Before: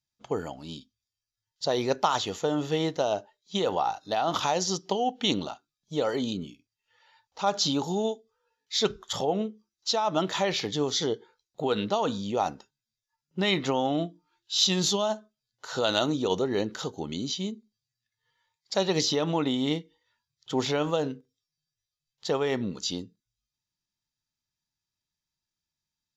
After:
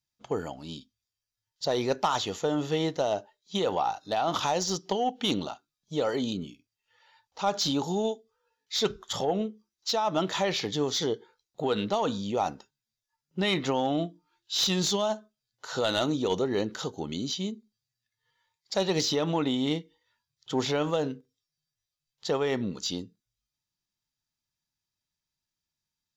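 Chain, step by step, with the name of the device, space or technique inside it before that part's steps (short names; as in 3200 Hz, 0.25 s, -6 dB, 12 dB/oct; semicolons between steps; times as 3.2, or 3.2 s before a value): saturation between pre-emphasis and de-emphasis (high shelf 3500 Hz +10 dB; soft clip -14 dBFS, distortion -17 dB; high shelf 3500 Hz -10 dB)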